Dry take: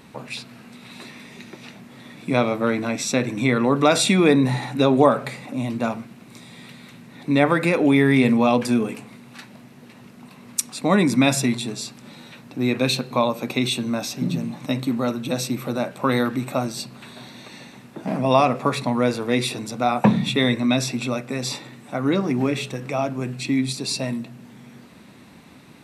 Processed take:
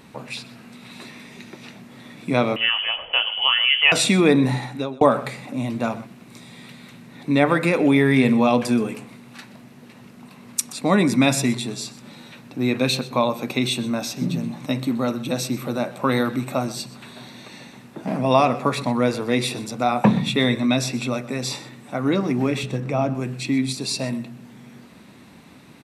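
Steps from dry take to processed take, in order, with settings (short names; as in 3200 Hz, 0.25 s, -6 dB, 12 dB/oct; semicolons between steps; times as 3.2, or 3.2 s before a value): 2.56–3.92 inverted band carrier 3200 Hz; 4.52–5.01 fade out; 22.63–23.15 tilt -2 dB/oct; echo 0.125 s -18 dB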